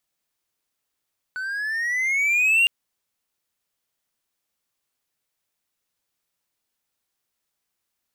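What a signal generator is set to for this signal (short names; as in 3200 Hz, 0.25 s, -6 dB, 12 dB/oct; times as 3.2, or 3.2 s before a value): gliding synth tone triangle, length 1.31 s, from 1490 Hz, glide +11 st, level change +13 dB, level -12 dB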